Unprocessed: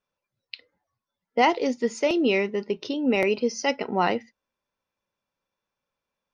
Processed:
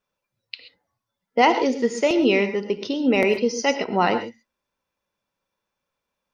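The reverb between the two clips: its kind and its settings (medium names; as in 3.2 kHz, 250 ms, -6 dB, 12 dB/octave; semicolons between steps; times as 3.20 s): gated-style reverb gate 150 ms rising, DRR 9.5 dB; trim +3 dB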